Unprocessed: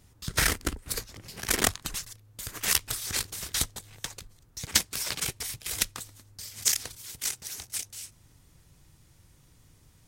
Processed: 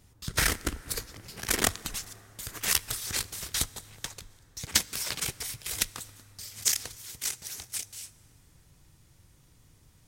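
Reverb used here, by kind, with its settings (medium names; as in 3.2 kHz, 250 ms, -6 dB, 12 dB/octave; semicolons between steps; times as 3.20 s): plate-style reverb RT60 4.2 s, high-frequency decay 0.5×, DRR 18 dB; trim -1 dB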